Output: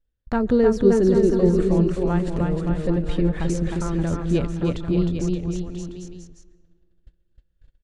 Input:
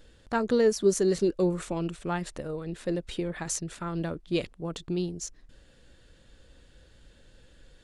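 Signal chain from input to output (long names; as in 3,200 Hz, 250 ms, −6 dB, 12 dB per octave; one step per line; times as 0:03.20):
noise gate −48 dBFS, range −38 dB
RIAA equalisation playback
bouncing-ball delay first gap 310 ms, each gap 0.85×, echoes 5
on a send at −20 dB: convolution reverb RT60 2.2 s, pre-delay 95 ms
on the sum: one half of a high-frequency compander encoder only
level +1 dB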